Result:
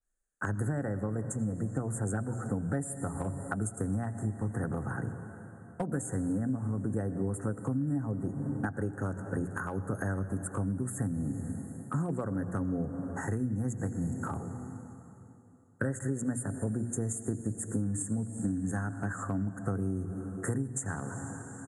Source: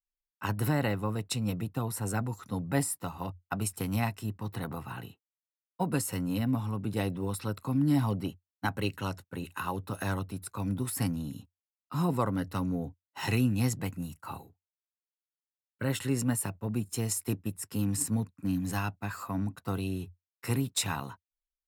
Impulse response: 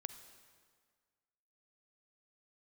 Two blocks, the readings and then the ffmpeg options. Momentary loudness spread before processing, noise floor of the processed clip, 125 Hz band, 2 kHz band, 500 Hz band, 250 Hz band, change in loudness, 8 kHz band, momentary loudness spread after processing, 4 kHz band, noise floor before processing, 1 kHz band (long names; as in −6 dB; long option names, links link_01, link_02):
10 LU, −52 dBFS, −0.5 dB, −2.0 dB, −0.5 dB, −1.0 dB, −1.5 dB, −3.5 dB, 5 LU, below −30 dB, below −85 dBFS, −4.5 dB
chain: -filter_complex "[0:a]bandreject=frequency=60:width_type=h:width=6,bandreject=frequency=120:width_type=h:width=6,bandreject=frequency=180:width_type=h:width=6,bandreject=frequency=240:width_type=h:width=6,bandreject=frequency=300:width_type=h:width=6,bandreject=frequency=360:width_type=h:width=6,asplit=2[link_01][link_02];[1:a]atrim=start_sample=2205,asetrate=24696,aresample=44100[link_03];[link_02][link_03]afir=irnorm=-1:irlink=0,volume=2dB[link_04];[link_01][link_04]amix=inputs=2:normalize=0,acompressor=threshold=-34dB:ratio=12,acrossover=split=370|900[link_05][link_06][link_07];[link_06]aeval=exprs='clip(val(0),-1,0.0126)':channel_layout=same[link_08];[link_07]asuperstop=centerf=3500:order=20:qfactor=0.77[link_09];[link_05][link_08][link_09]amix=inputs=3:normalize=0,aresample=22050,aresample=44100,adynamicequalizer=threshold=0.00158:dfrequency=1800:dqfactor=0.7:tfrequency=1800:tqfactor=0.7:attack=5:release=100:ratio=0.375:range=2.5:mode=cutabove:tftype=highshelf,volume=6dB"